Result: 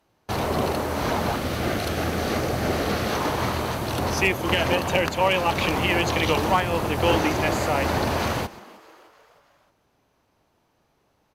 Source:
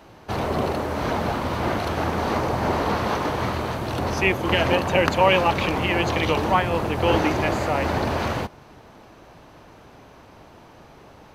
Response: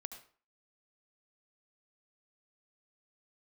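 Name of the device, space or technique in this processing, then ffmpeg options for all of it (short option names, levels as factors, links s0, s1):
limiter into clipper: -filter_complex "[0:a]asettb=1/sr,asplit=3[s0][s1][s2];[s0]atrim=end=1.364[s3];[s1]atrim=start=1.36:end=3.15,asetpts=PTS-STARTPTS,afade=t=in:d=0.004:c=qsin,afade=t=out:st=1.786:d=0.004:c=qsin,equalizer=f=960:t=o:w=0.35:g=-13[s4];[s2]atrim=start=3.146[s5];[s3][s4]acrossfade=d=0.004:c1=hsin:c2=qsin[s6];[s6][s5]acrossfade=d=0.004:c1=qsin:c2=hsin,agate=range=0.1:threshold=0.00891:ratio=16:detection=peak,alimiter=limit=0.355:level=0:latency=1:release=376,asoftclip=type=hard:threshold=0.282,aemphasis=mode=production:type=cd,asplit=5[s7][s8][s9][s10][s11];[s8]adelay=310,afreqshift=120,volume=0.075[s12];[s9]adelay=620,afreqshift=240,volume=0.0422[s13];[s10]adelay=930,afreqshift=360,volume=0.0234[s14];[s11]adelay=1240,afreqshift=480,volume=0.0132[s15];[s7][s12][s13][s14][s15]amix=inputs=5:normalize=0"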